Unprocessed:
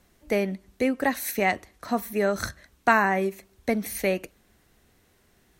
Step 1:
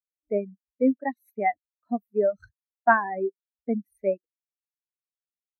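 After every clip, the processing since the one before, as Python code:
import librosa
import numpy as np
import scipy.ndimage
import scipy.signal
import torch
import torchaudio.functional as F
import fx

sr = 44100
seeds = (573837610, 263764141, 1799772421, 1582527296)

y = fx.dereverb_blind(x, sr, rt60_s=0.85)
y = fx.spectral_expand(y, sr, expansion=2.5)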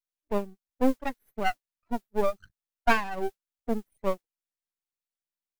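y = np.maximum(x, 0.0)
y = fx.mod_noise(y, sr, seeds[0], snr_db=29)
y = y * 10.0 ** (1.0 / 20.0)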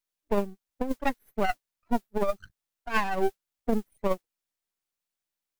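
y = fx.over_compress(x, sr, threshold_db=-25.0, ratio=-0.5)
y = y * 10.0 ** (2.5 / 20.0)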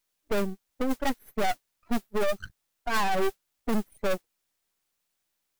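y = 10.0 ** (-27.5 / 20.0) * np.tanh(x / 10.0 ** (-27.5 / 20.0))
y = y * 10.0 ** (9.0 / 20.0)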